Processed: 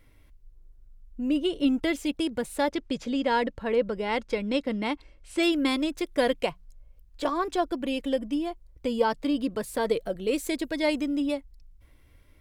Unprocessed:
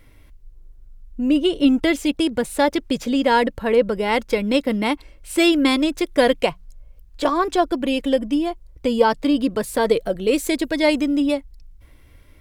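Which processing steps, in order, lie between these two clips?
2.70–5.43 s: low-pass 7.1 kHz 12 dB/octave; trim -8 dB

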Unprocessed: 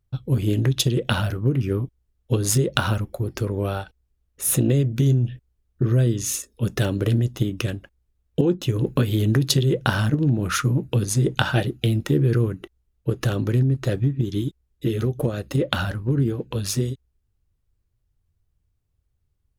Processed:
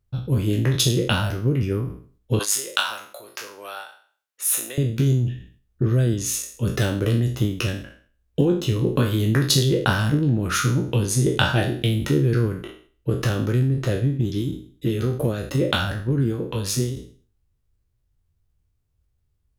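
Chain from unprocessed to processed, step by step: spectral sustain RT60 0.46 s; 2.39–4.78 s: high-pass 950 Hz 12 dB/octave; decay stretcher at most 120 dB/s; trim -1 dB

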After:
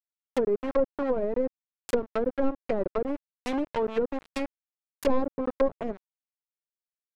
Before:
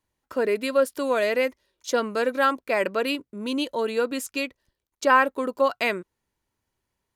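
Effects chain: tracing distortion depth 0.5 ms; small samples zeroed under -25 dBFS; low-pass that closes with the level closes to 480 Hz, closed at -20.5 dBFS

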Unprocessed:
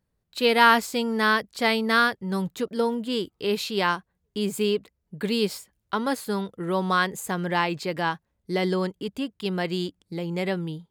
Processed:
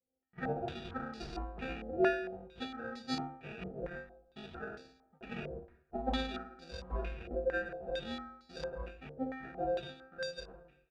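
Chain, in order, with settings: fade out at the end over 0.79 s; high-pass 160 Hz 12 dB/octave; peak limiter -15 dBFS, peak gain reduction 10.5 dB; inharmonic resonator 260 Hz, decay 0.77 s, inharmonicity 0.008; sample-and-hold 42×; comb of notches 290 Hz; on a send at -13 dB: multi-tap echo 114/327 ms -7.5/-18 dB + reverberation, pre-delay 4 ms; on the sum: step-sequenced low-pass 4.4 Hz 540–4700 Hz; trim +7 dB

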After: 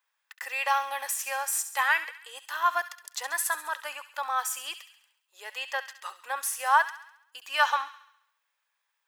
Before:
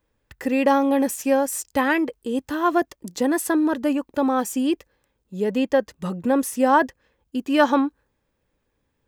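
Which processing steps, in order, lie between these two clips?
inverse Chebyshev high-pass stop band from 210 Hz, stop band 70 dB; on a send: feedback echo behind a high-pass 68 ms, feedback 54%, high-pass 1.6 kHz, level -11 dB

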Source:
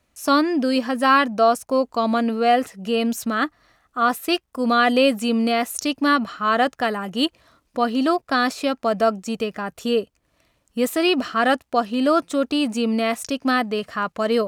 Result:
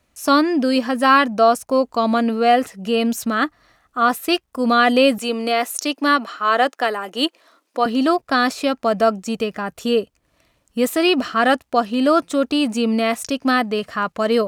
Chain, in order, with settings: 5.18–7.86 s: high-pass 290 Hz 24 dB/octave; trim +2.5 dB

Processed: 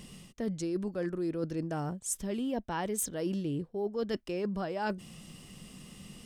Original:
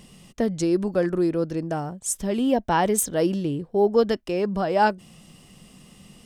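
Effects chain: peaking EQ 730 Hz -4 dB 0.93 oct; reverse; compression 6:1, threshold -31 dBFS, peak gain reduction 15.5 dB; reverse

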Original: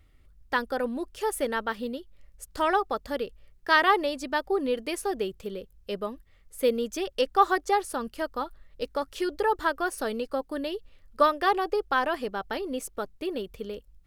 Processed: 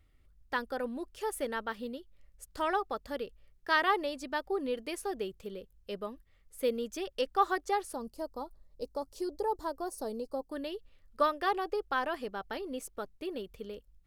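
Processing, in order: 7.94–10.51 s: high-order bell 2.1 kHz -15 dB; trim -6.5 dB

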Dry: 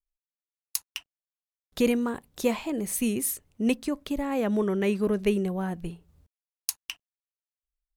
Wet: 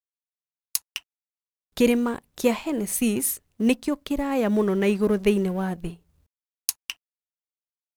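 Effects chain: companding laws mixed up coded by A; trim +4.5 dB

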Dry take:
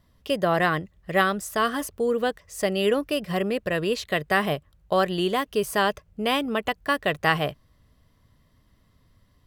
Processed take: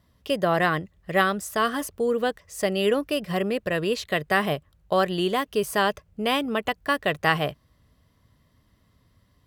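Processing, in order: high-pass 44 Hz

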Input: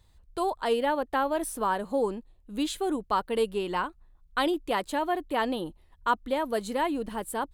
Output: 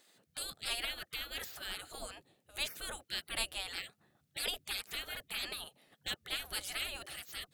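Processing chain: spectral gate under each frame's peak -25 dB weak; peaking EQ 1 kHz -12 dB 0.32 oct; trim +7 dB

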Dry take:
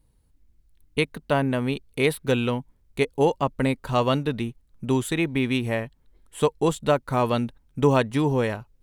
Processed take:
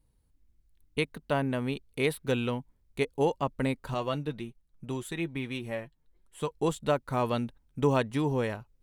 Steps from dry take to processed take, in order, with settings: 3.94–6.51 s: flange 1.7 Hz, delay 5 ms, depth 1.7 ms, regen +48%; trim -6 dB

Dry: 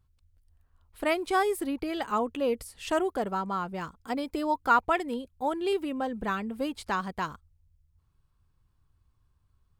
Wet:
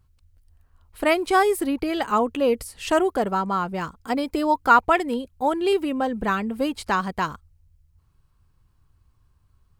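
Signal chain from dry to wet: band-stop 3.5 kHz, Q 22; trim +7 dB

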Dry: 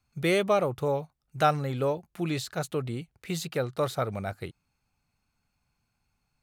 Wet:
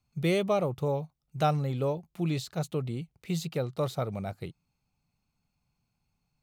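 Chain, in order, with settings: fifteen-band graphic EQ 160 Hz +6 dB, 1.6 kHz -8 dB, 10 kHz -4 dB; trim -2.5 dB

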